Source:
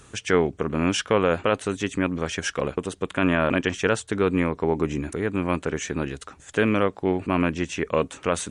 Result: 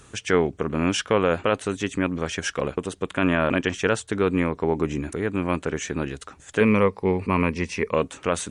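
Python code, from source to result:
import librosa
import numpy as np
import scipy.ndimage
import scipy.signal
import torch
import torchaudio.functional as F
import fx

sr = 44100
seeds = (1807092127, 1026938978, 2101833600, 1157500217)

y = fx.ripple_eq(x, sr, per_octave=0.88, db=10, at=(6.6, 7.94))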